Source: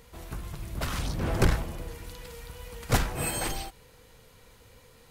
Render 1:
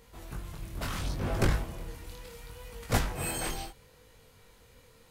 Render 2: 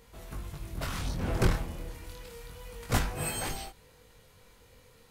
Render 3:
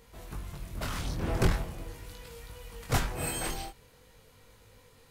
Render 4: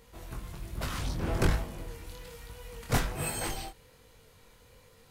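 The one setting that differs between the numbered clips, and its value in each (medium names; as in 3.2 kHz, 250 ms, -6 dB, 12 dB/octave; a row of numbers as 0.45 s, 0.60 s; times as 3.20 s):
chorus, rate: 0.72 Hz, 0.28 Hz, 0.44 Hz, 1.2 Hz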